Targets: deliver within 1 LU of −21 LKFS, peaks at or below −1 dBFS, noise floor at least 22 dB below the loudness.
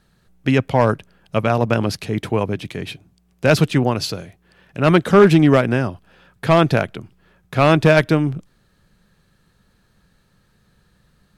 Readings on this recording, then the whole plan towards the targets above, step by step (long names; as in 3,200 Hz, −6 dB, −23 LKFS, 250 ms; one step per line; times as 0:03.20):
integrated loudness −17.5 LKFS; sample peak −3.5 dBFS; target loudness −21.0 LKFS
→ level −3.5 dB